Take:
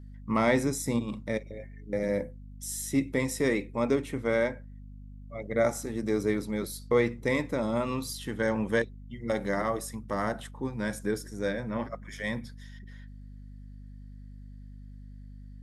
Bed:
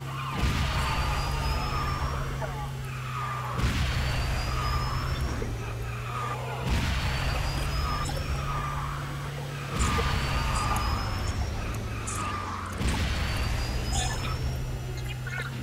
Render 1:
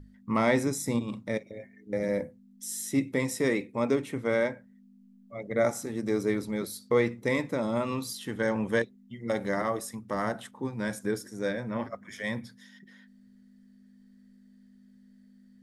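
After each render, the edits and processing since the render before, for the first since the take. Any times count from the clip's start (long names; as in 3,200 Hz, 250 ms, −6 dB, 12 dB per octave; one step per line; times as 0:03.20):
mains-hum notches 50/100/150 Hz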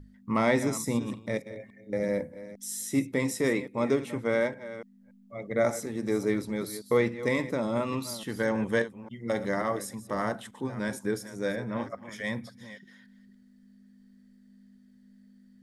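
delay that plays each chunk backwards 284 ms, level −14 dB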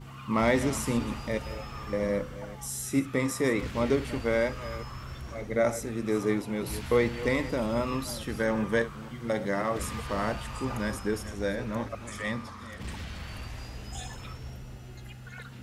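mix in bed −11 dB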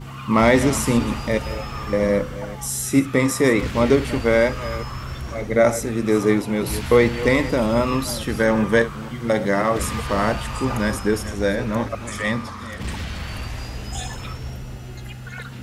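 level +9.5 dB
brickwall limiter −3 dBFS, peak gain reduction 1.5 dB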